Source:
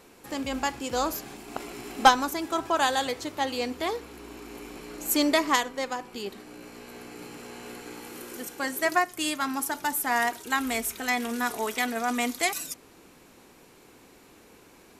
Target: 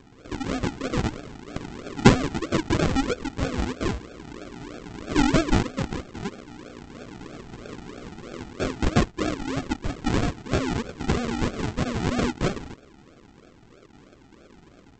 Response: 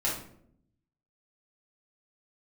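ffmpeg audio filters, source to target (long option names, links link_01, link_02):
-af "aresample=16000,acrusher=samples=23:mix=1:aa=0.000001:lfo=1:lforange=13.8:lforate=3.1,aresample=44100,bass=frequency=250:gain=-2,treble=frequency=4000:gain=-3,bandreject=frequency=930:width=20,volume=4dB"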